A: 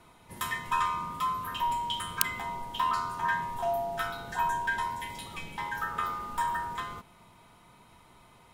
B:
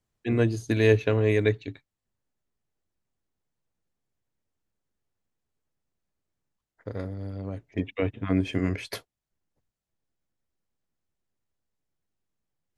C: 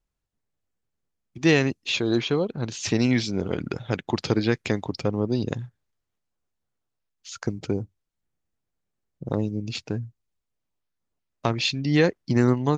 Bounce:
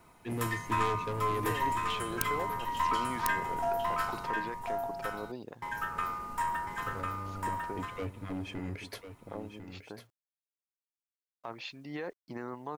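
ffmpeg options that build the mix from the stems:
ffmpeg -i stem1.wav -i stem2.wav -i stem3.wav -filter_complex "[0:a]equalizer=frequency=3500:width_type=o:width=0.42:gain=-9,aeval=exprs='(tanh(7.94*val(0)+0.55)-tanh(0.55))/7.94':channel_layout=same,volume=0.5dB,asplit=3[link_01][link_02][link_03];[link_01]atrim=end=4.27,asetpts=PTS-STARTPTS,afade=type=out:start_time=4.266:duration=0.004:curve=hsin[link_04];[link_02]atrim=start=4.27:end=5.62,asetpts=PTS-STARTPTS,volume=0[link_05];[link_03]atrim=start=5.62,asetpts=PTS-STARTPTS,afade=type=in:duration=0.004:curve=hsin[link_06];[link_04][link_05][link_06]concat=n=3:v=0:a=1,asplit=2[link_07][link_08];[link_08]volume=-3dB[link_09];[1:a]asoftclip=type=tanh:threshold=-24.5dB,volume=-7dB,asplit=2[link_10][link_11];[link_11]volume=-10dB[link_12];[2:a]bandpass=frequency=970:width_type=q:width=1.2:csg=0,alimiter=limit=-22dB:level=0:latency=1:release=15,volume=-6dB[link_13];[link_09][link_12]amix=inputs=2:normalize=0,aecho=0:1:1049:1[link_14];[link_07][link_10][link_13][link_14]amix=inputs=4:normalize=0,acrusher=bits=11:mix=0:aa=0.000001" out.wav

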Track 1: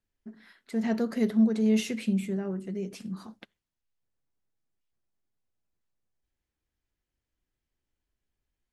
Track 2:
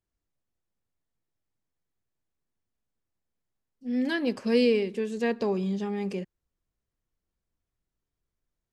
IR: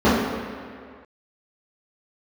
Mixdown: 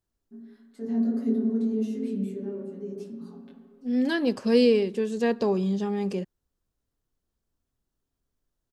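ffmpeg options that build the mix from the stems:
-filter_complex "[0:a]aecho=1:1:7.2:0.78,acrossover=split=500[link_01][link_02];[link_02]acompressor=threshold=-37dB:ratio=6[link_03];[link_01][link_03]amix=inputs=2:normalize=0,flanger=delay=18:depth=3.5:speed=1.6,adelay=50,volume=-10dB,asplit=2[link_04][link_05];[link_05]volume=-23dB[link_06];[1:a]volume=3dB[link_07];[2:a]atrim=start_sample=2205[link_08];[link_06][link_08]afir=irnorm=-1:irlink=0[link_09];[link_04][link_07][link_09]amix=inputs=3:normalize=0,equalizer=frequency=2200:width=2.4:gain=-6.5"

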